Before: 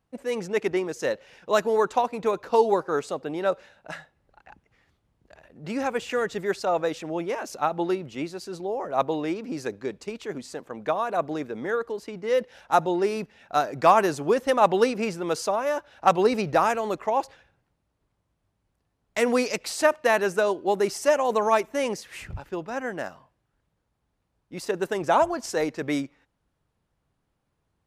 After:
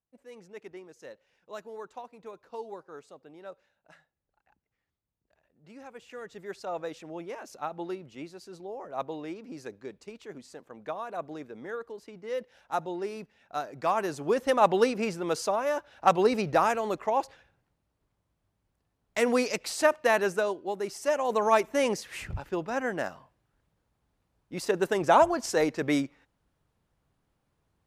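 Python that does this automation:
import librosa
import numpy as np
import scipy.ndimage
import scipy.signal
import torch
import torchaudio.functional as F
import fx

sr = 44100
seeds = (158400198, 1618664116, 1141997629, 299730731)

y = fx.gain(x, sr, db=fx.line((5.88, -19.5), (6.75, -10.0), (13.9, -10.0), (14.44, -2.5), (20.27, -2.5), (20.76, -10.0), (21.69, 0.5)))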